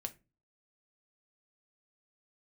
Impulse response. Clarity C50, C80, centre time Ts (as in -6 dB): 19.0 dB, 26.0 dB, 5 ms